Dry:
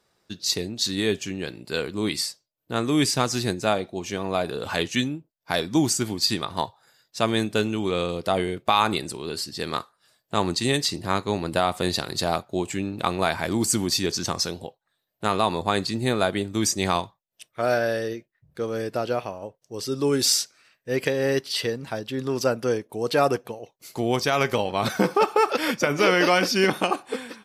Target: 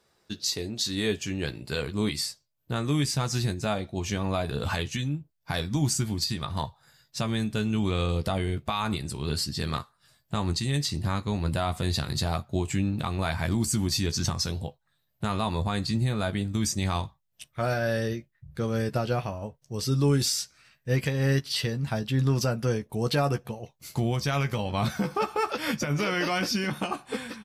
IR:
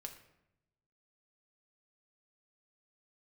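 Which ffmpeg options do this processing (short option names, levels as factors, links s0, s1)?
-filter_complex "[0:a]asubboost=boost=6.5:cutoff=140,alimiter=limit=0.141:level=0:latency=1:release=313,asplit=2[s0][s1];[s1]adelay=14,volume=0.376[s2];[s0][s2]amix=inputs=2:normalize=0"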